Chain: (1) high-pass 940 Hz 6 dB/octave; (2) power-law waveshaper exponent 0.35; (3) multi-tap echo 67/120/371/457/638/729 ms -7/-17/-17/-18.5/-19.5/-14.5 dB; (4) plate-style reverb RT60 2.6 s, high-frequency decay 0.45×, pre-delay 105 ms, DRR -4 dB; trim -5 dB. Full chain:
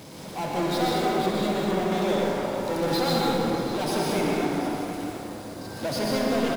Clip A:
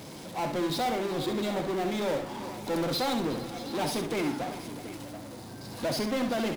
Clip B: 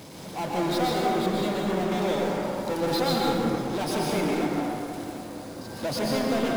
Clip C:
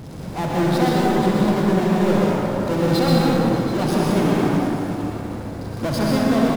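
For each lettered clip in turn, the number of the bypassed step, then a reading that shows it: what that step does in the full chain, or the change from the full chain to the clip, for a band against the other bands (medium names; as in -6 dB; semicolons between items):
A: 4, echo-to-direct 5.5 dB to -5.0 dB; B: 3, echo-to-direct 5.5 dB to 4.0 dB; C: 1, 125 Hz band +7.5 dB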